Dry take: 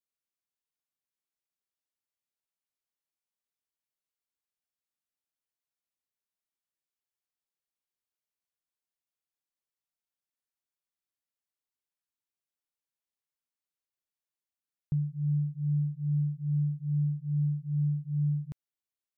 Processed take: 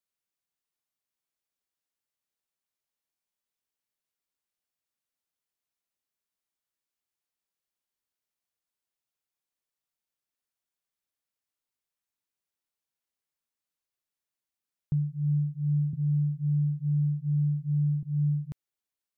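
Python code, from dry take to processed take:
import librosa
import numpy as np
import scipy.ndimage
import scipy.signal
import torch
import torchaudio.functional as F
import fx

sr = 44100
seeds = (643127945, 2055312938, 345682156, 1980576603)

y = fx.band_squash(x, sr, depth_pct=70, at=(15.93, 18.03))
y = y * 10.0 ** (2.0 / 20.0)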